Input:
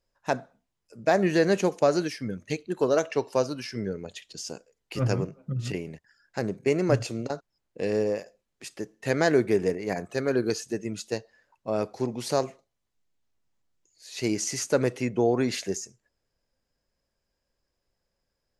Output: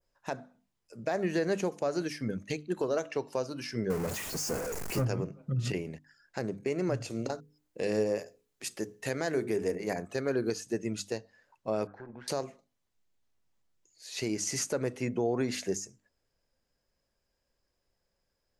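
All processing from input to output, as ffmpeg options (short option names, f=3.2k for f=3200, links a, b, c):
-filter_complex "[0:a]asettb=1/sr,asplit=3[a][b][c];[a]atrim=end=3.904[d];[b]atrim=start=3.9:end=5.05,asetpts=PTS-STARTPTS,afade=t=in:d=0.004:c=qsin,afade=t=out:st=1.146:d=0.004:c=qsin,aeval=exprs='val(0)+0.5*0.0376*sgn(val(0))':c=same,equalizer=f=3.5k:w=1.6:g=-13[e];[c]atrim=start=5.046[f];[d][e]acrossfade=d=0.004:c1=hsin:c2=qsin[g];[g][f]acrossfade=d=0.004:c1=qsin:c2=hsin,asettb=1/sr,asplit=3[h][i][j];[h]atrim=end=7.104[k];[i]atrim=start=7.1:end=9.96,asetpts=PTS-STARTPTS,afade=t=in:d=0.004:c=qsin,afade=t=out:st=2.856:d=0.004:c=qsin,highshelf=f=7.3k:g=9,bandreject=f=60:t=h:w=6,bandreject=f=120:t=h:w=6,bandreject=f=180:t=h:w=6,bandreject=f=240:t=h:w=6,bandreject=f=300:t=h:w=6,bandreject=f=360:t=h:w=6,bandreject=f=420:t=h:w=6,bandreject=f=480:t=h:w=6[l];[j]atrim=start=9.956[m];[k][l]acrossfade=d=0.004:c1=hsin:c2=qsin[n];[n][m]acrossfade=d=0.004:c1=qsin:c2=hsin,asettb=1/sr,asplit=3[o][p][q];[o]atrim=end=11.874[r];[p]atrim=start=11.87:end=12.28,asetpts=PTS-STARTPTS,afade=t=in:d=0.004:c=qsin,afade=t=out:st=0.406:d=0.004:c=qsin,acompressor=threshold=-49dB:ratio=2:attack=3.2:release=140:knee=1:detection=peak,tremolo=f=130:d=0.519,lowpass=f=1.6k:t=q:w=12[s];[q]atrim=start=12.276[t];[r][s]acrossfade=d=0.004:c1=hsin:c2=qsin[u];[u][t]acrossfade=d=0.004:c1=qsin:c2=hsin,bandreject=f=50:t=h:w=6,bandreject=f=100:t=h:w=6,bandreject=f=150:t=h:w=6,bandreject=f=200:t=h:w=6,bandreject=f=250:t=h:w=6,bandreject=f=300:t=h:w=6,adynamicequalizer=threshold=0.00562:dfrequency=3700:dqfactor=0.96:tfrequency=3700:tqfactor=0.96:attack=5:release=100:ratio=0.375:range=2:mode=cutabove:tftype=bell,alimiter=limit=-20dB:level=0:latency=1:release=337"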